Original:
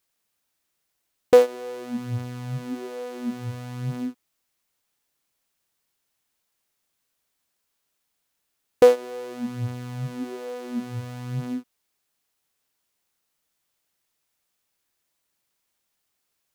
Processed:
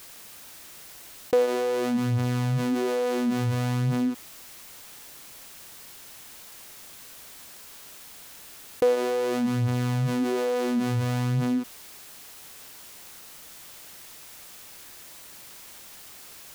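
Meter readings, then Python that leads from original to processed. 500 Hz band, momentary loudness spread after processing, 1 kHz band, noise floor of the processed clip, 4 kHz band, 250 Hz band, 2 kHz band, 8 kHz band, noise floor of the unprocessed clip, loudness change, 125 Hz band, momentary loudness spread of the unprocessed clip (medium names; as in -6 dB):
-3.5 dB, 17 LU, +2.0 dB, -46 dBFS, +5.0 dB, +5.5 dB, +4.0 dB, +7.5 dB, -77 dBFS, 0.0 dB, +5.5 dB, 17 LU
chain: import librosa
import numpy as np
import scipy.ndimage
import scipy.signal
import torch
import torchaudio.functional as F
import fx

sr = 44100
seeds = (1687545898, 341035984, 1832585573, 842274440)

y = fx.env_flatten(x, sr, amount_pct=70)
y = y * 10.0 ** (-9.0 / 20.0)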